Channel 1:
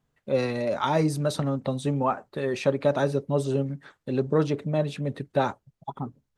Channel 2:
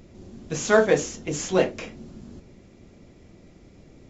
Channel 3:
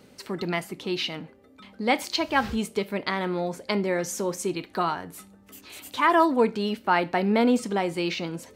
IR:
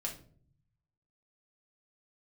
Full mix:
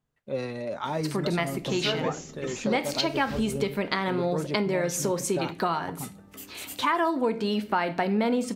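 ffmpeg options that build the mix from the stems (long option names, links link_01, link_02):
-filter_complex "[0:a]volume=-6dB[link_01];[1:a]adelay=1150,volume=-9dB[link_02];[2:a]adelay=850,volume=1.5dB,asplit=2[link_03][link_04];[link_04]volume=-7dB[link_05];[3:a]atrim=start_sample=2205[link_06];[link_05][link_06]afir=irnorm=-1:irlink=0[link_07];[link_01][link_02][link_03][link_07]amix=inputs=4:normalize=0,acompressor=threshold=-23dB:ratio=4"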